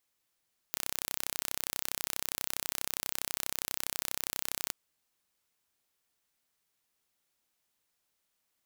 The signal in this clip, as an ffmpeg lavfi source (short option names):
-f lavfi -i "aevalsrc='0.501*eq(mod(n,1365),0)':d=3.98:s=44100"